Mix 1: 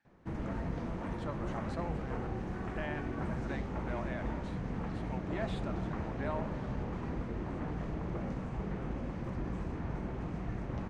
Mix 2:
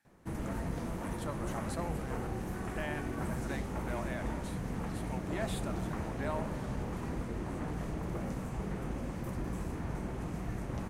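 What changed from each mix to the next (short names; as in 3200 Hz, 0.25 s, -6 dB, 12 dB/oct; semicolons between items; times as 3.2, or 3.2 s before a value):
master: remove air absorption 150 m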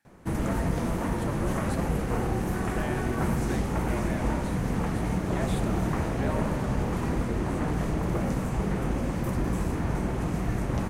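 background +6.5 dB; reverb: on, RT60 1.2 s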